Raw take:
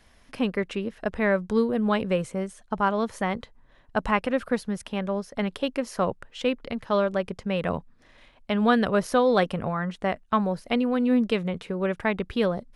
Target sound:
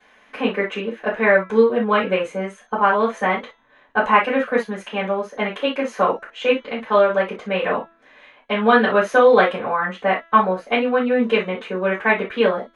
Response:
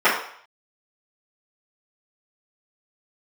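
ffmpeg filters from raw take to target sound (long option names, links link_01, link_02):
-filter_complex "[0:a]bandreject=frequency=333:width_type=h:width=4,bandreject=frequency=666:width_type=h:width=4,bandreject=frequency=999:width_type=h:width=4,bandreject=frequency=1332:width_type=h:width=4,bandreject=frequency=1665:width_type=h:width=4,bandreject=frequency=1998:width_type=h:width=4,bandreject=frequency=2331:width_type=h:width=4,bandreject=frequency=2664:width_type=h:width=4,bandreject=frequency=2997:width_type=h:width=4,bandreject=frequency=3330:width_type=h:width=4,bandreject=frequency=3663:width_type=h:width=4,bandreject=frequency=3996:width_type=h:width=4,bandreject=frequency=4329:width_type=h:width=4,bandreject=frequency=4662:width_type=h:width=4,bandreject=frequency=4995:width_type=h:width=4,bandreject=frequency=5328:width_type=h:width=4,bandreject=frequency=5661:width_type=h:width=4,bandreject=frequency=5994:width_type=h:width=4,bandreject=frequency=6327:width_type=h:width=4[link_01];[1:a]atrim=start_sample=2205,atrim=end_sample=3969,asetrate=52920,aresample=44100[link_02];[link_01][link_02]afir=irnorm=-1:irlink=0,volume=-12dB"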